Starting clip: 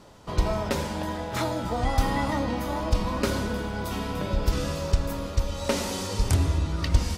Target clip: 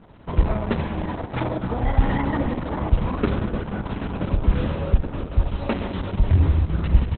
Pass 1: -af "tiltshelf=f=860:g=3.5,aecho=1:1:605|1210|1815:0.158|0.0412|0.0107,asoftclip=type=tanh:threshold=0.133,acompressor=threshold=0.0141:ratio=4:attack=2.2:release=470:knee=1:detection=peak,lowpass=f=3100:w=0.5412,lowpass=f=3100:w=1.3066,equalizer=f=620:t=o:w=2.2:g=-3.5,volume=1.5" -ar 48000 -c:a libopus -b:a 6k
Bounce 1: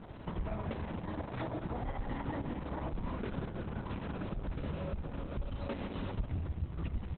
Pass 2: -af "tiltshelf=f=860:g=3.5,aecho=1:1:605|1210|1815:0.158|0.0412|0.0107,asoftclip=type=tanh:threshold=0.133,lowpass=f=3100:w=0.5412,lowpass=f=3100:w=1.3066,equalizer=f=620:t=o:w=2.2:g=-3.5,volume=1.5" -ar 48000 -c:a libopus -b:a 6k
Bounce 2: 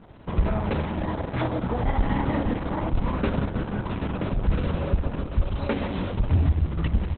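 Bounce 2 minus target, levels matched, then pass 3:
saturation: distortion +12 dB
-af "tiltshelf=f=860:g=3.5,aecho=1:1:605|1210|1815:0.158|0.0412|0.0107,asoftclip=type=tanh:threshold=0.422,lowpass=f=3100:w=0.5412,lowpass=f=3100:w=1.3066,equalizer=f=620:t=o:w=2.2:g=-3.5,volume=1.5" -ar 48000 -c:a libopus -b:a 6k

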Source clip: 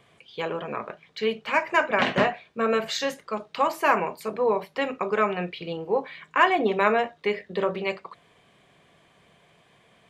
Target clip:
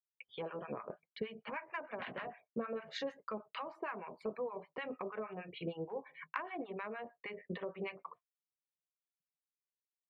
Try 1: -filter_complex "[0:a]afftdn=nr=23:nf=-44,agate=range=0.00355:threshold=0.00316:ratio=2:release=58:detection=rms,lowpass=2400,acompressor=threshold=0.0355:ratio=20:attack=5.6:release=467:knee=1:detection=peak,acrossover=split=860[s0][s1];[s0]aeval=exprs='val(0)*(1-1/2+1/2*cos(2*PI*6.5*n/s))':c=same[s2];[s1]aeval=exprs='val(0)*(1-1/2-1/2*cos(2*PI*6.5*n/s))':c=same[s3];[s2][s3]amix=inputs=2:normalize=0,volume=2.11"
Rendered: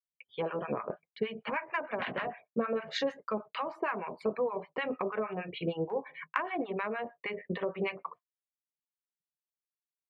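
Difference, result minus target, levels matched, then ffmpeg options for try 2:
compression: peak gain reduction -8.5 dB
-filter_complex "[0:a]afftdn=nr=23:nf=-44,agate=range=0.00355:threshold=0.00316:ratio=2:release=58:detection=rms,lowpass=2400,acompressor=threshold=0.0126:ratio=20:attack=5.6:release=467:knee=1:detection=peak,acrossover=split=860[s0][s1];[s0]aeval=exprs='val(0)*(1-1/2+1/2*cos(2*PI*6.5*n/s))':c=same[s2];[s1]aeval=exprs='val(0)*(1-1/2-1/2*cos(2*PI*6.5*n/s))':c=same[s3];[s2][s3]amix=inputs=2:normalize=0,volume=2.11"

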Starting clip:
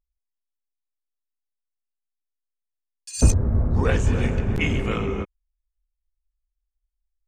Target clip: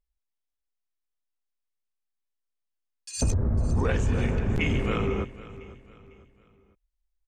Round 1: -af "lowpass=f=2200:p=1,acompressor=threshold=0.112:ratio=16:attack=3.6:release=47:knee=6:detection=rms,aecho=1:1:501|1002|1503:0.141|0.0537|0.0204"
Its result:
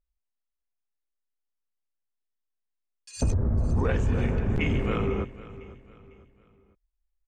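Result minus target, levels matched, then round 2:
8 kHz band -7.0 dB
-af "lowpass=f=6700:p=1,acompressor=threshold=0.112:ratio=16:attack=3.6:release=47:knee=6:detection=rms,aecho=1:1:501|1002|1503:0.141|0.0537|0.0204"

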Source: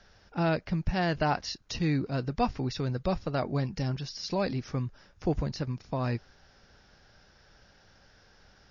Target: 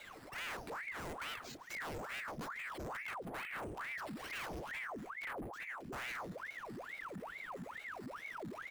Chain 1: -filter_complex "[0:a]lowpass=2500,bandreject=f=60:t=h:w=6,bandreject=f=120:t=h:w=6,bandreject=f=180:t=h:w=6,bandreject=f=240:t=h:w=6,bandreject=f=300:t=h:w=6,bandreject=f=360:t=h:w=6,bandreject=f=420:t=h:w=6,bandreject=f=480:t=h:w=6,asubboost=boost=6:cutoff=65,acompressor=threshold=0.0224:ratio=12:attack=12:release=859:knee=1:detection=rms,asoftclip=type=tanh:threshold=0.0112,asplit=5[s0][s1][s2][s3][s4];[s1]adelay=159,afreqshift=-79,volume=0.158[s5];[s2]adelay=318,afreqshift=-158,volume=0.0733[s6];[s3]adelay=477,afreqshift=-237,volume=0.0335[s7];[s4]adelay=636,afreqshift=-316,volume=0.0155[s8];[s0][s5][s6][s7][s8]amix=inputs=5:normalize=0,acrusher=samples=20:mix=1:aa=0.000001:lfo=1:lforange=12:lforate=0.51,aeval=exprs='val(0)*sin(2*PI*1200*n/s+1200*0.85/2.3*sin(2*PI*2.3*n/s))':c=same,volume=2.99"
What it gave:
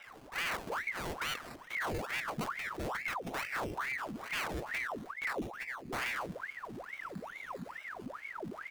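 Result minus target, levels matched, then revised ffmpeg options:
decimation with a swept rate: distortion +7 dB; saturation: distortion -6 dB
-filter_complex "[0:a]lowpass=2500,bandreject=f=60:t=h:w=6,bandreject=f=120:t=h:w=6,bandreject=f=180:t=h:w=6,bandreject=f=240:t=h:w=6,bandreject=f=300:t=h:w=6,bandreject=f=360:t=h:w=6,bandreject=f=420:t=h:w=6,bandreject=f=480:t=h:w=6,asubboost=boost=6:cutoff=65,acompressor=threshold=0.0224:ratio=12:attack=12:release=859:knee=1:detection=rms,asoftclip=type=tanh:threshold=0.00376,asplit=5[s0][s1][s2][s3][s4];[s1]adelay=159,afreqshift=-79,volume=0.158[s5];[s2]adelay=318,afreqshift=-158,volume=0.0733[s6];[s3]adelay=477,afreqshift=-237,volume=0.0335[s7];[s4]adelay=636,afreqshift=-316,volume=0.0155[s8];[s0][s5][s6][s7][s8]amix=inputs=5:normalize=0,acrusher=samples=6:mix=1:aa=0.000001:lfo=1:lforange=3.6:lforate=0.51,aeval=exprs='val(0)*sin(2*PI*1200*n/s+1200*0.85/2.3*sin(2*PI*2.3*n/s))':c=same,volume=2.99"

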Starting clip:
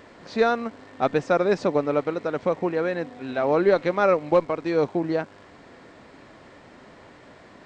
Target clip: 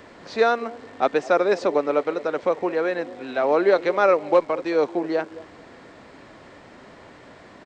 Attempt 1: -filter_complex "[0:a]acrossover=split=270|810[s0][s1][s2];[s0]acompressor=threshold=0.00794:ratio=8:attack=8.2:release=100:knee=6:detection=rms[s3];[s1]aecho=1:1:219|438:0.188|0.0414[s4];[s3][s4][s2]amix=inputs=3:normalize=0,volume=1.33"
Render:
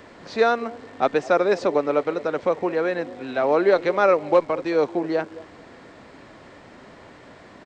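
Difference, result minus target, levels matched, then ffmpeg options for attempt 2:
compression: peak gain reduction -8 dB
-filter_complex "[0:a]acrossover=split=270|810[s0][s1][s2];[s0]acompressor=threshold=0.00282:ratio=8:attack=8.2:release=100:knee=6:detection=rms[s3];[s1]aecho=1:1:219|438:0.188|0.0414[s4];[s3][s4][s2]amix=inputs=3:normalize=0,volume=1.33"

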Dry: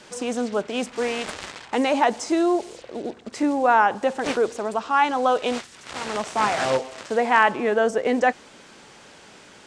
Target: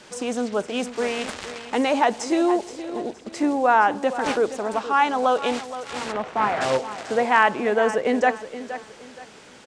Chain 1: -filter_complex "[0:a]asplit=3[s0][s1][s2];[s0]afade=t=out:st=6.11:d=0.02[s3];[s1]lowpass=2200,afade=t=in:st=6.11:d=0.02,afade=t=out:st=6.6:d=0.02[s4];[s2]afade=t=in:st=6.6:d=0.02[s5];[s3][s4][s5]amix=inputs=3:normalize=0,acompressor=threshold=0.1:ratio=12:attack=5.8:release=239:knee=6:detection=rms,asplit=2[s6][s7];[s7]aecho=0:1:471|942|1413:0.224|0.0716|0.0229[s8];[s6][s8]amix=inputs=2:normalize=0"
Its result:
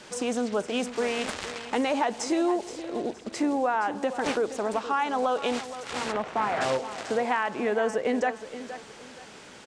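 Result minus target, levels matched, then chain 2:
compression: peak gain reduction +11.5 dB
-filter_complex "[0:a]asplit=3[s0][s1][s2];[s0]afade=t=out:st=6.11:d=0.02[s3];[s1]lowpass=2200,afade=t=in:st=6.11:d=0.02,afade=t=out:st=6.6:d=0.02[s4];[s2]afade=t=in:st=6.6:d=0.02[s5];[s3][s4][s5]amix=inputs=3:normalize=0,asplit=2[s6][s7];[s7]aecho=0:1:471|942|1413:0.224|0.0716|0.0229[s8];[s6][s8]amix=inputs=2:normalize=0"

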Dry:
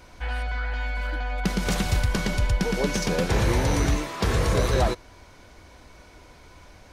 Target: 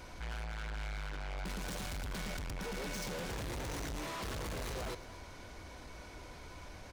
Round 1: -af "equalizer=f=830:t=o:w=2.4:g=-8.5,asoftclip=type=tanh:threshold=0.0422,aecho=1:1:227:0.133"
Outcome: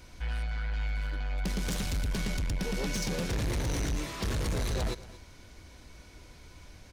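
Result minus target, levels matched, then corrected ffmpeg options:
1 kHz band -7.5 dB; saturation: distortion -5 dB
-af "asoftclip=type=tanh:threshold=0.0112,aecho=1:1:227:0.133"

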